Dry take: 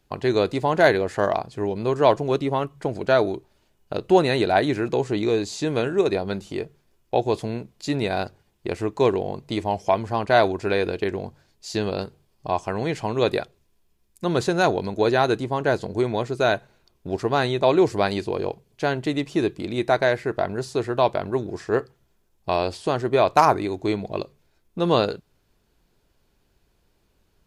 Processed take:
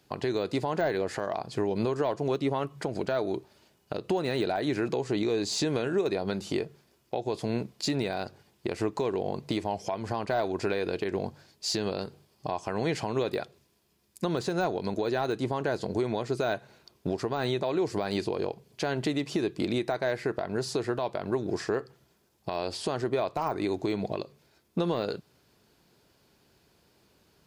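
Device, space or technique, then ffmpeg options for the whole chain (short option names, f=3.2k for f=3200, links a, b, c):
broadcast voice chain: -af "highpass=110,deesser=0.75,acompressor=threshold=-26dB:ratio=5,equalizer=f=4.8k:t=o:w=0.39:g=4,alimiter=limit=-22.5dB:level=0:latency=1:release=193,volume=4.5dB"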